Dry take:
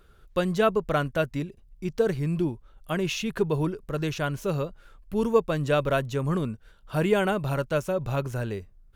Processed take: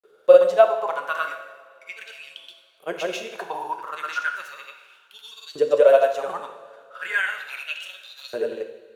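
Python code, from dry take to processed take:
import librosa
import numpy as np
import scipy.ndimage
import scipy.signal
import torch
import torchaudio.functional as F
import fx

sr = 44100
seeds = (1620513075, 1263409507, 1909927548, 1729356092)

y = fx.granulator(x, sr, seeds[0], grain_ms=100.0, per_s=20.0, spray_ms=100.0, spread_st=0)
y = fx.filter_lfo_highpass(y, sr, shape='saw_up', hz=0.36, low_hz=410.0, high_hz=4600.0, q=6.6)
y = fx.rev_double_slope(y, sr, seeds[1], early_s=0.93, late_s=3.5, knee_db=-19, drr_db=4.5)
y = y * 10.0 ** (-1.0 / 20.0)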